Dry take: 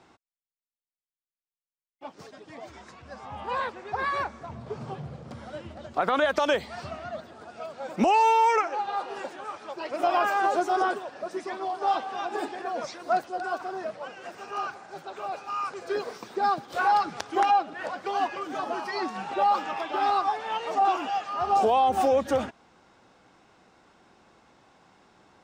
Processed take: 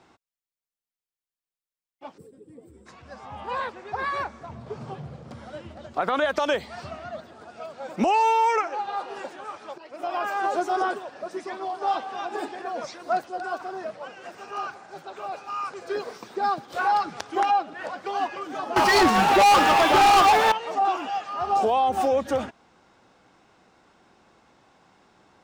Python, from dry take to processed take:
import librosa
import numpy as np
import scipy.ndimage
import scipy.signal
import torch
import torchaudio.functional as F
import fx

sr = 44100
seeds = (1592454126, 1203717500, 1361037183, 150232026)

y = fx.spec_box(x, sr, start_s=2.18, length_s=0.68, low_hz=550.0, high_hz=7400.0, gain_db=-22)
y = fx.leveller(y, sr, passes=5, at=(18.76, 20.52))
y = fx.edit(y, sr, fx.fade_in_from(start_s=9.78, length_s=0.83, floor_db=-13.0), tone=tone)